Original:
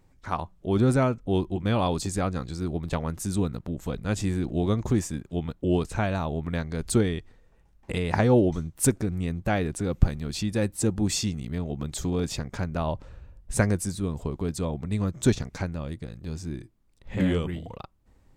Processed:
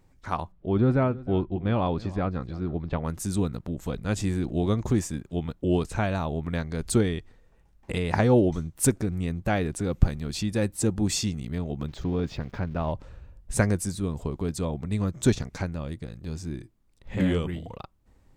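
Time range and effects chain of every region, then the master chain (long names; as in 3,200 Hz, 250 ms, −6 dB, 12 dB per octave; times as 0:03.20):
0:00.52–0:03.04: high-frequency loss of the air 320 metres + single-tap delay 316 ms −19.5 dB
0:11.88–0:12.92: spike at every zero crossing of −32.5 dBFS + high-frequency loss of the air 260 metres
whole clip: no processing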